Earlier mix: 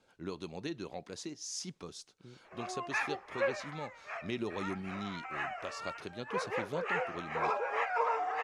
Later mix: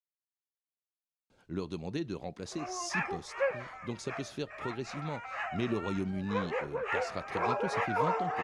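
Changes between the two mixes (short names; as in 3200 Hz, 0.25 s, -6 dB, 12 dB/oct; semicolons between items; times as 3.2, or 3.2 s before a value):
speech: entry +1.30 s; master: add low shelf 280 Hz +9.5 dB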